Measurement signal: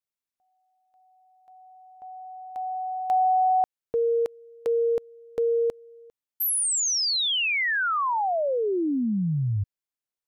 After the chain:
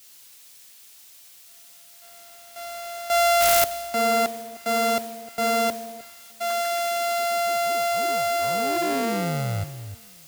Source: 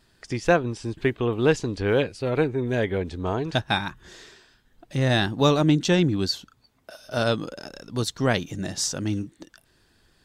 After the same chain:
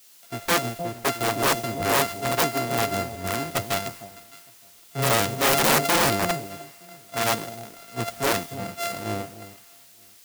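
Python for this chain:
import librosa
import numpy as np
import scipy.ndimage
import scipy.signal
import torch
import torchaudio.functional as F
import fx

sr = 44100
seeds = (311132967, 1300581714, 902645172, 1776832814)

p1 = np.r_[np.sort(x[:len(x) // 64 * 64].reshape(-1, 64), axis=1).ravel(), x[len(x) // 64 * 64:]]
p2 = p1 + fx.echo_alternate(p1, sr, ms=306, hz=880.0, feedback_pct=53, wet_db=-8.5, dry=0)
p3 = fx.dmg_noise_colour(p2, sr, seeds[0], colour='white', level_db=-41.0)
p4 = (np.mod(10.0 ** (15.0 / 20.0) * p3 + 1.0, 2.0) - 1.0) / 10.0 ** (15.0 / 20.0)
p5 = fx.low_shelf(p4, sr, hz=95.0, db=-11.0)
y = fx.band_widen(p5, sr, depth_pct=70)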